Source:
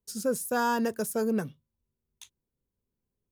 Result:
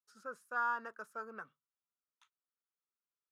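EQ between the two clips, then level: band-pass 1300 Hz, Q 6.7; +3.5 dB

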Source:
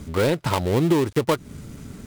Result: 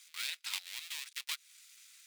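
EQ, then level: ladder high-pass 2200 Hz, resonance 30%; bell 3000 Hz -5.5 dB 0.21 oct; +1.0 dB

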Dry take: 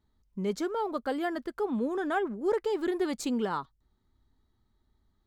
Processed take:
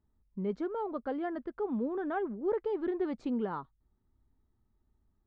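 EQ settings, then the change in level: tape spacing loss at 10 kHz 41 dB; -1.5 dB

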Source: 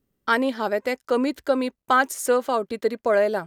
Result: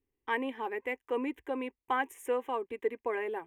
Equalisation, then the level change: resonant high shelf 3600 Hz -8.5 dB, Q 1.5; fixed phaser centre 920 Hz, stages 8; -7.5 dB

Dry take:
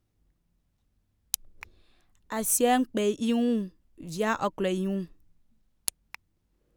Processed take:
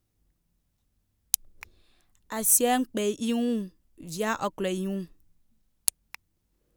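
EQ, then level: high shelf 5400 Hz +8.5 dB; -1.5 dB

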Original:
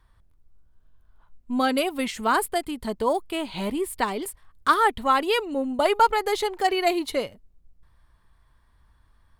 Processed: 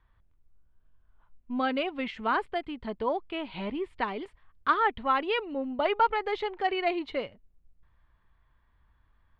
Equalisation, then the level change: ladder low-pass 3600 Hz, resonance 25%; 0.0 dB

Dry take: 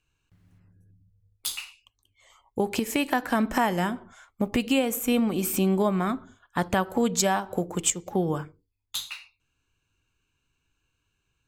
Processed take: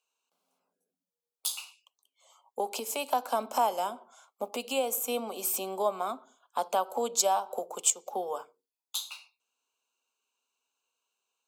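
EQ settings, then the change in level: steep high-pass 260 Hz 48 dB/oct; fixed phaser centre 760 Hz, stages 4; 0.0 dB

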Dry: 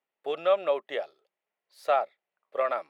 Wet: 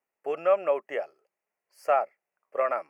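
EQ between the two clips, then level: Butterworth band-stop 3700 Hz, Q 1.6; +1.0 dB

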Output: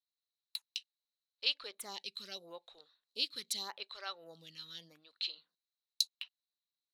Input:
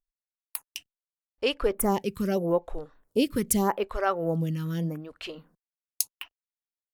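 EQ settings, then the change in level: band-pass 4000 Hz, Q 15; +16.0 dB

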